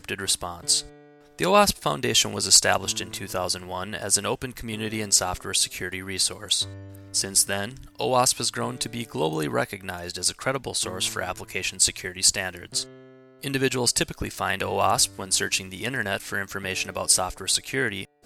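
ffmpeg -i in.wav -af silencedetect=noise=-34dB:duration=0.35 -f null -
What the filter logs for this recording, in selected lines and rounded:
silence_start: 0.86
silence_end: 1.39 | silence_duration: 0.53
silence_start: 12.83
silence_end: 13.43 | silence_duration: 0.60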